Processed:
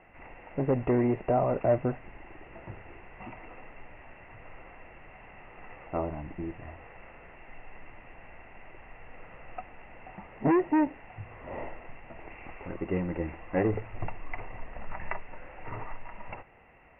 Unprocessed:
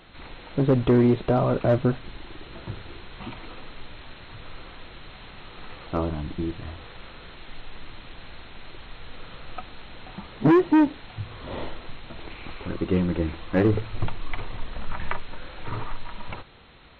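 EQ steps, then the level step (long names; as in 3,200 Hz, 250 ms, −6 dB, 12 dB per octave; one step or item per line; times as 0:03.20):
Chebyshev low-pass with heavy ripple 2,800 Hz, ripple 9 dB
0.0 dB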